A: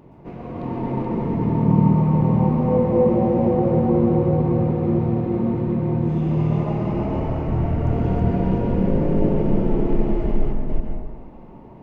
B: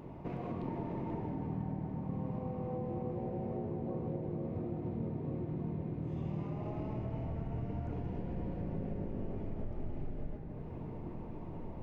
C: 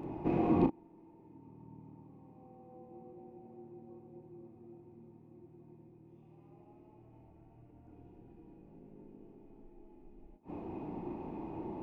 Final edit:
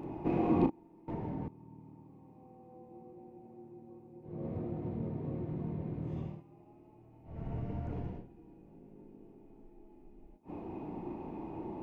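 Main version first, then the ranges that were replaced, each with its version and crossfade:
C
1.08–1.48 s: from B
4.34–6.31 s: from B, crossfade 0.24 s
7.36–8.16 s: from B, crossfade 0.24 s
not used: A

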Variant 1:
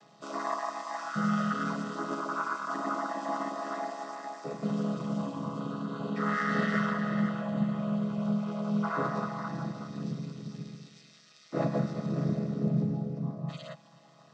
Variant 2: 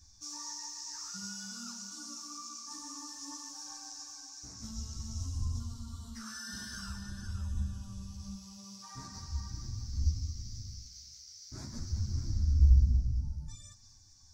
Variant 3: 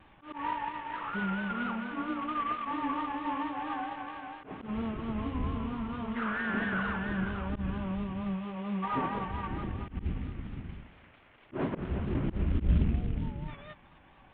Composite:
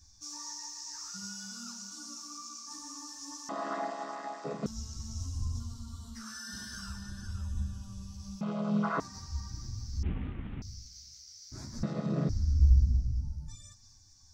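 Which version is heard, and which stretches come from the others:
2
3.49–4.66 s: from 1
8.41–9.00 s: from 1
10.03–10.62 s: from 3
11.83–12.29 s: from 1

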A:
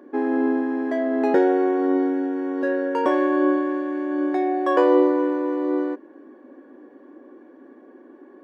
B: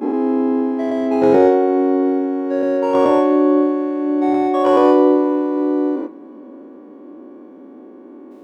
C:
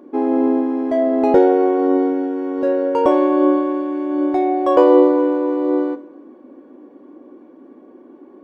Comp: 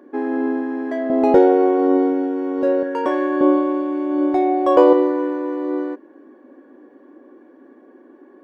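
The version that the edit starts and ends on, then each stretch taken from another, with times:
A
1.10–2.83 s: from C
3.41–4.93 s: from C
not used: B

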